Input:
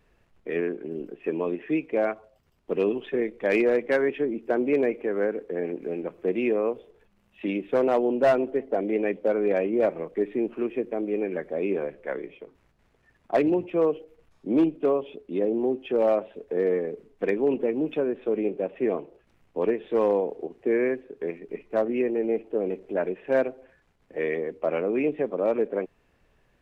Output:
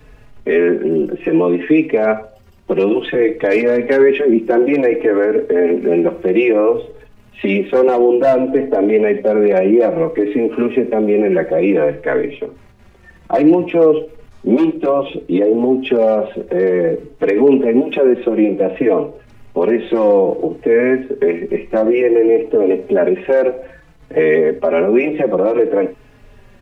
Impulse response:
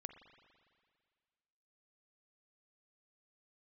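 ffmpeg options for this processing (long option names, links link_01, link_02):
-filter_complex "[0:a]asplit=2[link_01][link_02];[1:a]atrim=start_sample=2205,atrim=end_sample=4410,lowshelf=frequency=260:gain=9[link_03];[link_02][link_03]afir=irnorm=-1:irlink=0,volume=6.5dB[link_04];[link_01][link_04]amix=inputs=2:normalize=0,acrossover=split=210|510[link_05][link_06][link_07];[link_05]acompressor=threshold=-40dB:ratio=4[link_08];[link_06]acompressor=threshold=-18dB:ratio=4[link_09];[link_07]acompressor=threshold=-22dB:ratio=4[link_10];[link_08][link_09][link_10]amix=inputs=3:normalize=0,alimiter=level_in=14.5dB:limit=-1dB:release=50:level=0:latency=1,asplit=2[link_11][link_12];[link_12]adelay=4.2,afreqshift=-0.58[link_13];[link_11][link_13]amix=inputs=2:normalize=1,volume=-1dB"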